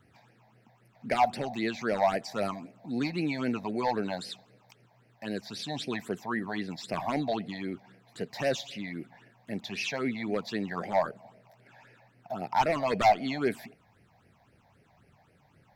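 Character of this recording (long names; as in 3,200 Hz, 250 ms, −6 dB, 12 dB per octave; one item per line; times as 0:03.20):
phaser sweep stages 8, 3.8 Hz, lowest notch 360–1,100 Hz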